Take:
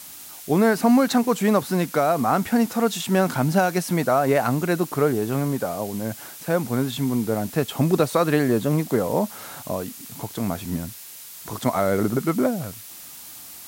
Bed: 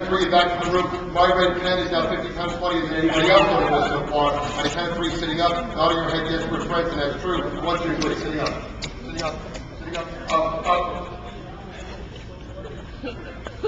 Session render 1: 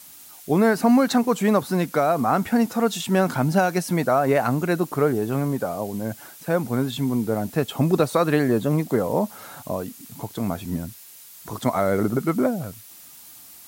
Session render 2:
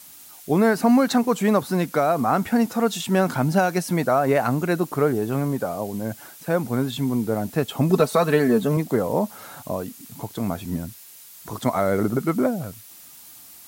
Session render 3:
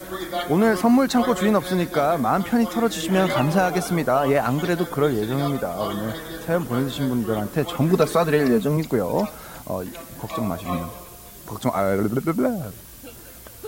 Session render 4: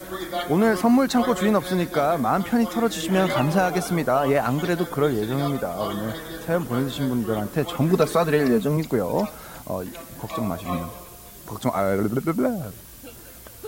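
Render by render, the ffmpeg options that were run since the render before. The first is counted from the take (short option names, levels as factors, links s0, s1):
-af "afftdn=nr=6:nf=-41"
-filter_complex "[0:a]asettb=1/sr,asplit=3[s0][s1][s2];[s0]atrim=end=7.894[s3];[s1]atrim=start=7.89:end=8.77,asetpts=PTS-STARTPTS,afade=t=in:d=0.004:c=qsin,afade=t=out:st=0.876:d=0.004:c=qsin,aecho=1:1:4.6:0.65,atrim=end_sample=38808[s4];[s2]atrim=start=8.766[s5];[s3][s4]acrossfade=d=0.004:c1=hsin:c2=qsin[s6];[s6][s5]acrossfade=d=0.004:c1=qsin:c2=hsin"
-filter_complex "[1:a]volume=0.299[s0];[0:a][s0]amix=inputs=2:normalize=0"
-af "volume=0.891"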